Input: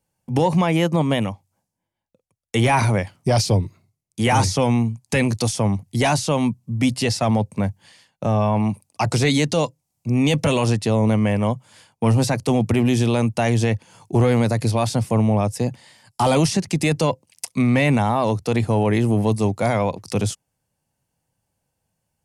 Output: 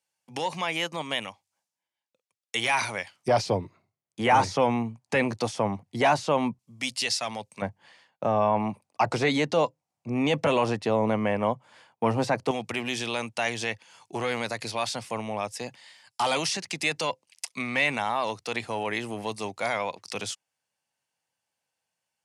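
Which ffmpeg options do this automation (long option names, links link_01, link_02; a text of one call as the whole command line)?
ffmpeg -i in.wav -af "asetnsamples=nb_out_samples=441:pad=0,asendcmd='3.28 bandpass f 1000;6.59 bandpass f 4200;7.62 bandpass f 1000;12.51 bandpass f 2800',bandpass=frequency=3600:width_type=q:width=0.58:csg=0" out.wav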